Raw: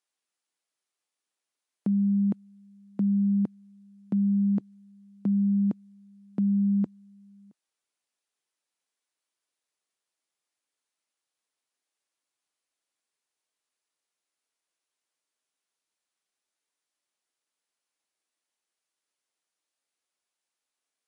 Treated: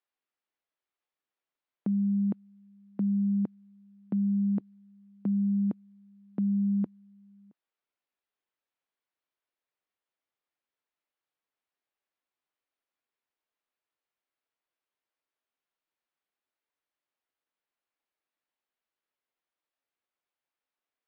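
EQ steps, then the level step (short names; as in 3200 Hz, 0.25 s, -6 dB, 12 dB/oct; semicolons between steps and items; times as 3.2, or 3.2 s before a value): air absorption 310 m; bell 91 Hz -4.5 dB 2.7 oct; 0.0 dB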